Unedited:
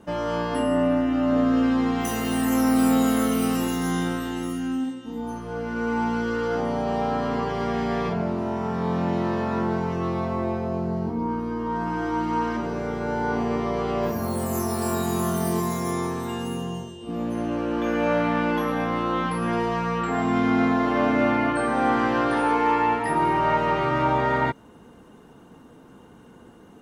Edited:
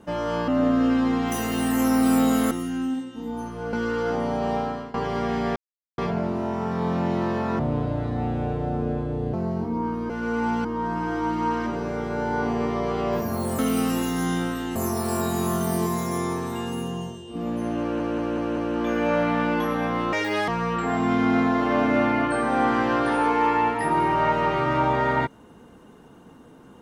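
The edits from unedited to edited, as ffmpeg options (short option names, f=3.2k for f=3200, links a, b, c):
-filter_complex "[0:a]asplit=18[a][b][c][d][e][f][g][h][i][j][k][l][m][n][o][p][q][r];[a]atrim=end=0.482[s];[b]atrim=start=1.208:end=3.242[t];[c]atrim=start=4.408:end=5.632[u];[d]atrim=start=6.178:end=7.39,asetpts=PTS-STARTPTS,afade=t=out:st=0.822:d=0.39:silence=0.1[v];[e]atrim=start=7.39:end=8.01,asetpts=PTS-STARTPTS,afade=t=in:d=0.004:c=hsin:silence=0.1,afade=t=out:st=0.616:d=0.004:c=hsin,apad=pad_dur=0.42[w];[f]atrim=start=8.01:end=9.624,asetpts=PTS-STARTPTS,afade=t=in:d=0.004:c=hsin[x];[g]atrim=start=9.62:end=10.79,asetpts=PTS-STARTPTS,asetrate=29547,aresample=44100,atrim=end_sample=77010,asetpts=PTS-STARTPTS[y];[h]atrim=start=10.786:end=11.552[z];[i]atrim=start=5.628:end=6.182[aa];[j]atrim=start=11.548:end=14.492[ab];[k]atrim=start=3.238:end=4.412[ac];[l]atrim=start=14.488:end=17.732[ad];[m]atrim=start=17.538:end=17.732[ae];[n]atrim=start=17.538:end=17.732[af];[o]atrim=start=17.538:end=17.732[ag];[p]atrim=start=17.538:end=19.104[ah];[q]atrim=start=19.1:end=19.73,asetpts=PTS-STARTPTS,asetrate=78498,aresample=44100,atrim=end_sample=15608,asetpts=PTS-STARTPTS[ai];[r]atrim=start=19.726[aj];[s][t]acrossfade=d=0.004:c1=hsin:c2=hsin[ak];[ak][u]acrossfade=d=0.004:c1=hsin:c2=hsin[al];[v][w][x]concat=n=3:v=0:a=1[am];[al][am]acrossfade=d=0.004:c1=hsin:c2=hsin[an];[an][y]acrossfade=d=0.004:c1=hsin:c2=hsin[ao];[ao][z]acrossfade=d=0.004:c1=hsin:c2=hsin[ap];[ap][aa]acrossfade=d=0.004:c1=hsin:c2=hsin[aq];[aq][ab]acrossfade=d=0.004:c1=hsin:c2=hsin[ar];[ar][ac]acrossfade=d=0.004:c1=hsin:c2=hsin[as];[as][ad]acrossfade=d=0.004:c1=hsin:c2=hsin[at];[at][ae]acrossfade=d=0.004:c1=hsin:c2=hsin[au];[au][af]acrossfade=d=0.004:c1=hsin:c2=hsin[av];[av][ag]acrossfade=d=0.004:c1=hsin:c2=hsin[aw];[aw][ah]acrossfade=d=0.004:c1=hsin:c2=hsin[ax];[ax][ai]acrossfade=d=0.004:c1=hsin:c2=hsin[ay];[ay][aj]acrossfade=d=0.004:c1=hsin:c2=hsin"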